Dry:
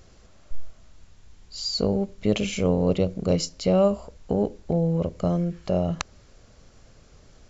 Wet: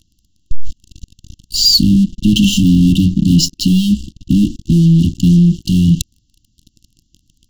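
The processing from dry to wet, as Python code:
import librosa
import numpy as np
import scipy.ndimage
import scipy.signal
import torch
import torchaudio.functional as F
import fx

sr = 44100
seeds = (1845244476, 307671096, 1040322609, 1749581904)

y = fx.high_shelf(x, sr, hz=5800.0, db=-11.5, at=(1.76, 4.34))
y = fx.leveller(y, sr, passes=5)
y = fx.brickwall_bandstop(y, sr, low_hz=340.0, high_hz=2700.0)
y = F.gain(torch.from_numpy(y), 2.5).numpy()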